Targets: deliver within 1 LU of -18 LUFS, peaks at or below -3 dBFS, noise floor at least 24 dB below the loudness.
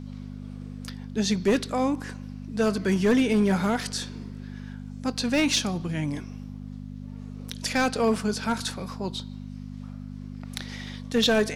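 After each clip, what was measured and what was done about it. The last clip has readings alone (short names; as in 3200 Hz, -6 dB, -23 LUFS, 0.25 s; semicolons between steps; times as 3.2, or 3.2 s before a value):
clipped 0.7%; flat tops at -15.5 dBFS; hum 50 Hz; harmonics up to 250 Hz; hum level -37 dBFS; loudness -26.0 LUFS; peak -15.5 dBFS; loudness target -18.0 LUFS
-> clip repair -15.5 dBFS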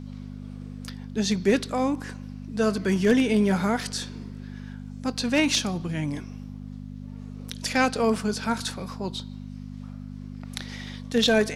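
clipped 0.0%; hum 50 Hz; harmonics up to 250 Hz; hum level -37 dBFS
-> de-hum 50 Hz, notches 5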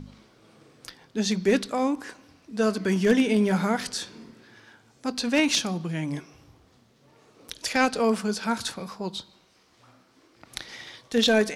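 hum none; loudness -25.5 LUFS; peak -7.0 dBFS; loudness target -18.0 LUFS
-> gain +7.5 dB; limiter -3 dBFS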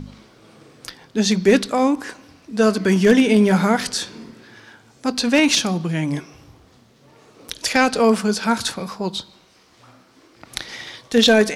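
loudness -18.5 LUFS; peak -3.0 dBFS; noise floor -54 dBFS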